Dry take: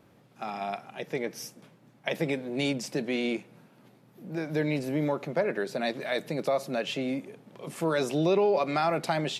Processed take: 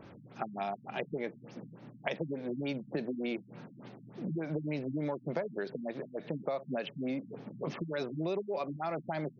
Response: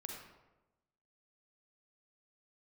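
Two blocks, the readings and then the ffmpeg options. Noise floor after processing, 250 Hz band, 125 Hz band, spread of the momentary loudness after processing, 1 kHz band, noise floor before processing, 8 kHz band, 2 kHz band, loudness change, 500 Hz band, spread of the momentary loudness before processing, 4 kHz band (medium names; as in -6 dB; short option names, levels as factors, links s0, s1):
-55 dBFS, -5.5 dB, -5.0 dB, 14 LU, -8.0 dB, -60 dBFS, under -20 dB, -9.0 dB, -7.5 dB, -8.0 dB, 13 LU, -12.5 dB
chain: -af "acompressor=threshold=0.01:ratio=6,afftfilt=real='re*lt(b*sr/1024,250*pow(6800/250,0.5+0.5*sin(2*PI*3.4*pts/sr)))':imag='im*lt(b*sr/1024,250*pow(6800/250,0.5+0.5*sin(2*PI*3.4*pts/sr)))':win_size=1024:overlap=0.75,volume=2.37"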